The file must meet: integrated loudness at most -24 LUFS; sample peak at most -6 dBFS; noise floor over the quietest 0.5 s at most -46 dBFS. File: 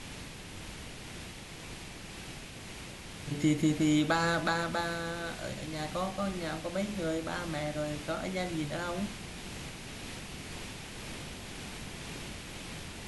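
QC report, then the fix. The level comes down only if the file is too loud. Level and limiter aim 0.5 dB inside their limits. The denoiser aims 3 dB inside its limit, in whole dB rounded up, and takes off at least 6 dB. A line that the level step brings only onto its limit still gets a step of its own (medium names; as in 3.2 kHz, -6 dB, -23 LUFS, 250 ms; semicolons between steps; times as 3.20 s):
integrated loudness -35.5 LUFS: pass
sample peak -13.5 dBFS: pass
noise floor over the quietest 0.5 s -45 dBFS: fail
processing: noise reduction 6 dB, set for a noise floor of -45 dBFS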